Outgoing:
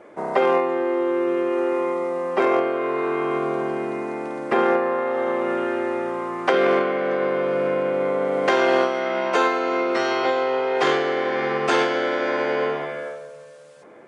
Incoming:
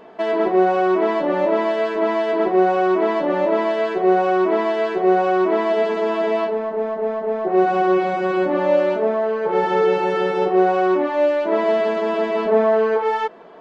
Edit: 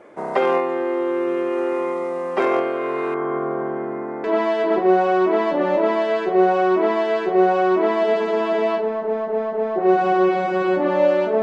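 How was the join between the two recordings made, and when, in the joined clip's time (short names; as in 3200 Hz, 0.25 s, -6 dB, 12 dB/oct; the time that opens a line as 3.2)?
outgoing
3.14–4.24 polynomial smoothing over 41 samples
4.24 switch to incoming from 1.93 s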